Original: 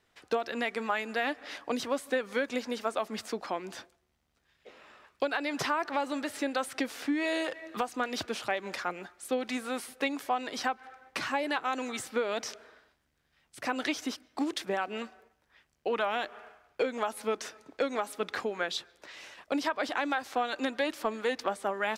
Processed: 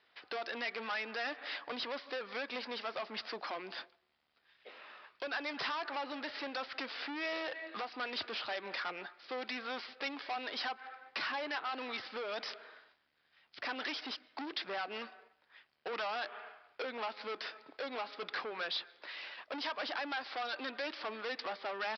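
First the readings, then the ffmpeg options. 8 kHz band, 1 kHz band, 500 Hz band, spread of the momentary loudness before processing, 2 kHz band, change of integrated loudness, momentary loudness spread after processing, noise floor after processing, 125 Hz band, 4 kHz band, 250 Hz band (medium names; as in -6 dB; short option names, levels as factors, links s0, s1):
-20.5 dB, -7.0 dB, -9.5 dB, 8 LU, -4.5 dB, -6.5 dB, 8 LU, -75 dBFS, under -10 dB, -1.5 dB, -12.5 dB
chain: -af "aresample=11025,asoftclip=type=tanh:threshold=0.0178,aresample=44100,highpass=f=830:p=1,volume=1.5"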